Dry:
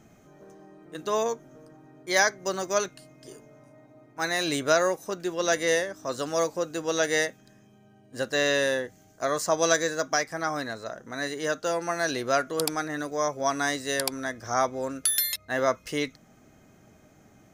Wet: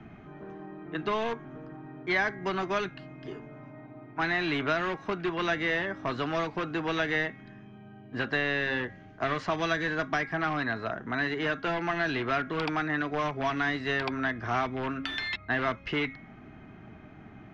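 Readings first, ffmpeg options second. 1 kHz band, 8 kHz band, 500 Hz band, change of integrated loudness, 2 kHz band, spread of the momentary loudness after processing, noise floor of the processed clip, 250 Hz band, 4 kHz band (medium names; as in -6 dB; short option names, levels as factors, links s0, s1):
-1.5 dB, -24.5 dB, -6.0 dB, -3.0 dB, +0.5 dB, 20 LU, -50 dBFS, +1.0 dB, -5.0 dB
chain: -filter_complex "[0:a]asplit=2[s0][s1];[s1]aeval=exprs='(mod(16.8*val(0)+1,2)-1)/16.8':c=same,volume=0.355[s2];[s0][s2]amix=inputs=2:normalize=0,lowpass=f=2900:w=0.5412,lowpass=f=2900:w=1.3066,equalizer=f=530:w=4.4:g=-14.5,bandreject=f=273.5:t=h:w=4,bandreject=f=547:t=h:w=4,bandreject=f=820.5:t=h:w=4,bandreject=f=1094:t=h:w=4,bandreject=f=1367.5:t=h:w=4,bandreject=f=1641:t=h:w=4,bandreject=f=1914.5:t=h:w=4,bandreject=f=2188:t=h:w=4,acrossover=split=170|480|2100[s3][s4][s5][s6];[s3]acompressor=threshold=0.00501:ratio=4[s7];[s4]acompressor=threshold=0.00794:ratio=4[s8];[s5]acompressor=threshold=0.0141:ratio=4[s9];[s6]acompressor=threshold=0.0112:ratio=4[s10];[s7][s8][s9][s10]amix=inputs=4:normalize=0,volume=2"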